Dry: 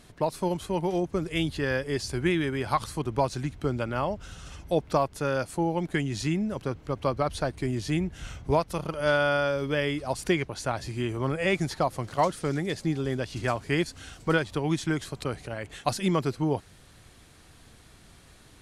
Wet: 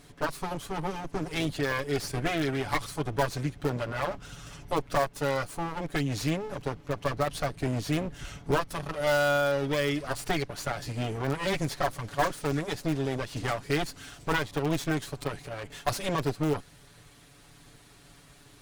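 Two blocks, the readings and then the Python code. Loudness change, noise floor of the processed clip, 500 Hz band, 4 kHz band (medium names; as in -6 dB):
-2.0 dB, -55 dBFS, -2.0 dB, 0.0 dB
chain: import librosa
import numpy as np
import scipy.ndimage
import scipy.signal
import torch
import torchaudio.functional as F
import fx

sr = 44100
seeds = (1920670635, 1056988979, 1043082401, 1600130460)

p1 = fx.lower_of_two(x, sr, delay_ms=7.0)
p2 = (np.mod(10.0 ** (18.5 / 20.0) * p1 + 1.0, 2.0) - 1.0) / 10.0 ** (18.5 / 20.0)
p3 = p1 + (p2 * 10.0 ** (-12.0 / 20.0))
y = p3 * 10.0 ** (-1.0 / 20.0)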